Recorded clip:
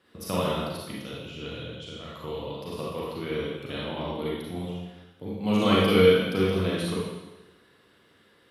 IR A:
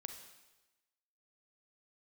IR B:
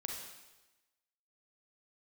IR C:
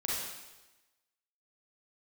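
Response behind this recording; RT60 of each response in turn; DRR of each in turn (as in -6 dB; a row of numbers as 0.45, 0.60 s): C; 1.1, 1.1, 1.1 s; 6.0, 0.5, -6.0 dB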